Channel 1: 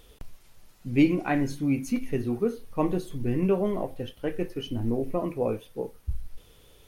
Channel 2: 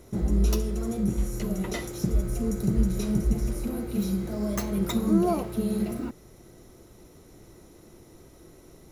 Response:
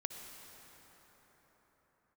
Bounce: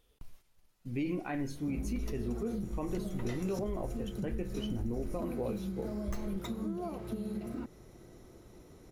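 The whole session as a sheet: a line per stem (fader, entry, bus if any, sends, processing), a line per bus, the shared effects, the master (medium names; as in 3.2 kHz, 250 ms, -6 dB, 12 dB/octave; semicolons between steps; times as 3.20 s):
-7.0 dB, 0.00 s, no send, gate -46 dBFS, range -9 dB
-3.0 dB, 1.55 s, no send, treble shelf 5.9 kHz -7.5 dB; compression 5:1, threshold -32 dBFS, peak gain reduction 14.5 dB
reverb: none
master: peak limiter -26.5 dBFS, peak gain reduction 9 dB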